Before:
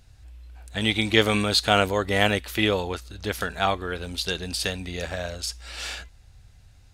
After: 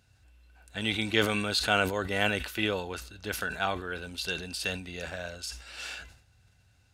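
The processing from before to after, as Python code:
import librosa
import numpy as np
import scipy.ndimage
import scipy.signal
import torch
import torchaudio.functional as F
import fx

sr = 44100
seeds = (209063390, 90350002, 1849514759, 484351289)

y = scipy.signal.sosfilt(scipy.signal.butter(2, 86.0, 'highpass', fs=sr, output='sos'), x)
y = fx.small_body(y, sr, hz=(1500.0, 2700.0), ring_ms=40, db=11)
y = fx.sustainer(y, sr, db_per_s=89.0)
y = y * 10.0 ** (-7.5 / 20.0)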